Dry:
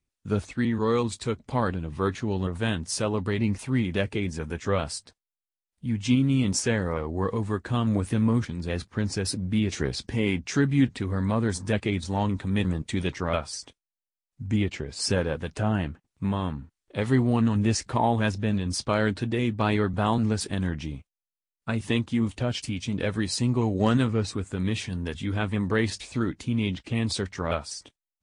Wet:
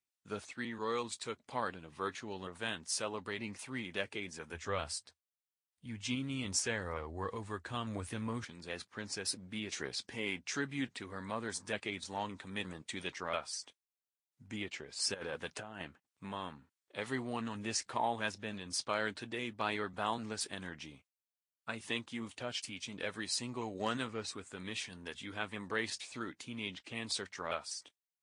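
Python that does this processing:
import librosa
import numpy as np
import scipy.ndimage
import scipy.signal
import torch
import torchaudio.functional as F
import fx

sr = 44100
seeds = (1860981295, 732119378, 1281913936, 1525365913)

y = fx.peak_eq(x, sr, hz=80.0, db=15.0, octaves=0.77, at=(4.53, 8.44))
y = fx.over_compress(y, sr, threshold_db=-28.0, ratio=-0.5, at=(15.14, 15.82))
y = fx.highpass(y, sr, hz=920.0, slope=6)
y = F.gain(torch.from_numpy(y), -5.5).numpy()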